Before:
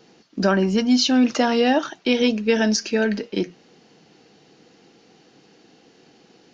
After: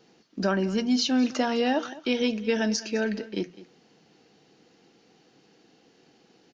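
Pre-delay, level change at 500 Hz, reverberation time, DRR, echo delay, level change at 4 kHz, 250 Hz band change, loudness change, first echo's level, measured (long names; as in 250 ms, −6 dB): no reverb audible, −6.5 dB, no reverb audible, no reverb audible, 207 ms, −6.5 dB, −6.5 dB, −6.5 dB, −18.0 dB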